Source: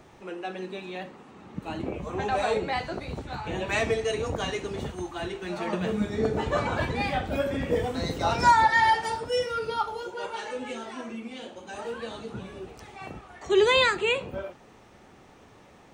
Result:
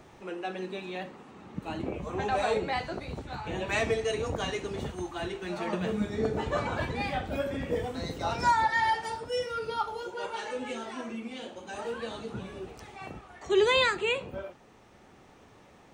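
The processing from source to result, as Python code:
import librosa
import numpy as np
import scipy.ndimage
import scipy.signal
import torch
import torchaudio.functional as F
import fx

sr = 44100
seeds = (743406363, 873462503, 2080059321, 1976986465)

y = fx.rider(x, sr, range_db=4, speed_s=2.0)
y = F.gain(torch.from_numpy(y), -4.5).numpy()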